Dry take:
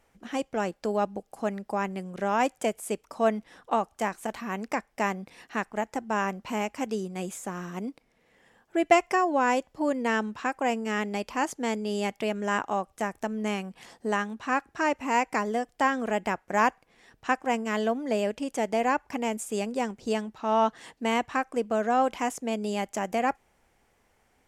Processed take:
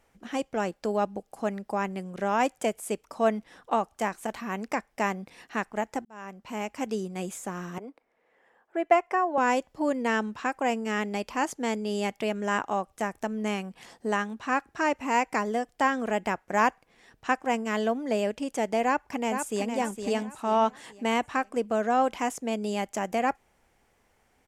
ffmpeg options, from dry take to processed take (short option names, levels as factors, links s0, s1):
-filter_complex "[0:a]asettb=1/sr,asplit=3[s0][s1][s2];[s0]atrim=end=7.784[s3];[s1]atrim=start=7.78:end=9.38,asetpts=PTS-STARTPTS,afade=t=in:d=0.004:c=qsin,afade=t=out:st=1.596:d=0.004:c=qsin,acrossover=split=340 2100:gain=0.112 1 0.2[s4][s5][s6];[s4][s5][s6]amix=inputs=3:normalize=0[s7];[s2]atrim=start=9.376[s8];[s3][s7]acrossfade=d=0.004:c1=hsin:c2=qsin[s9];[s9][s8]acrossfade=d=0.004:c1=qsin:c2=hsin,asplit=2[s10][s11];[s11]afade=t=in:st=18.85:d=0.01,afade=t=out:st=19.76:d=0.01,aecho=0:1:460|920|1380|1840|2300:0.446684|0.178673|0.0714694|0.0285877|0.0114351[s12];[s10][s12]amix=inputs=2:normalize=0,asplit=2[s13][s14];[s13]atrim=end=6.05,asetpts=PTS-STARTPTS,afade=t=out:st=6.046:d=0.004:c=hsin[s15];[s14]atrim=start=6.05,asetpts=PTS-STARTPTS,afade=t=in:d=0.83[s16];[s15][s16]concat=n=2:v=0:a=1"